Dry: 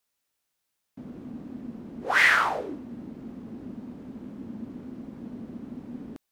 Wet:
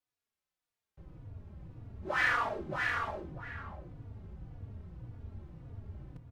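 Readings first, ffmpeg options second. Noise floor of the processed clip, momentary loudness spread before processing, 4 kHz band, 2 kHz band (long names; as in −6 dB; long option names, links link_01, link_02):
below −85 dBFS, 22 LU, −10.5 dB, −8.5 dB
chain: -filter_complex "[0:a]aemphasis=mode=reproduction:type=cd,asplit=2[link_01][link_02];[link_02]aecho=0:1:622:0.596[link_03];[link_01][link_03]amix=inputs=2:normalize=0,afreqshift=-150,asplit=2[link_04][link_05];[link_05]adelay=641.4,volume=-10dB,highshelf=frequency=4000:gain=-14.4[link_06];[link_04][link_06]amix=inputs=2:normalize=0,asplit=2[link_07][link_08];[link_08]adelay=3.5,afreqshift=-1.8[link_09];[link_07][link_09]amix=inputs=2:normalize=1,volume=-5.5dB"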